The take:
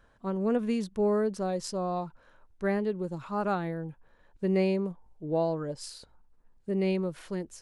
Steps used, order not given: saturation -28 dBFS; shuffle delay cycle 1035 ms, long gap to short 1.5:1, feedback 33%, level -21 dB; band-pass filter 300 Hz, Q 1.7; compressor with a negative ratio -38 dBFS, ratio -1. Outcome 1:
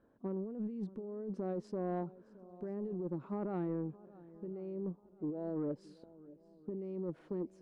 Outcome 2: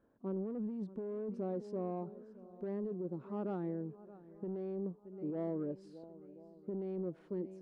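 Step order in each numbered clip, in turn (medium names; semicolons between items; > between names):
band-pass filter > compressor with a negative ratio > shuffle delay > saturation; shuffle delay > saturation > band-pass filter > compressor with a negative ratio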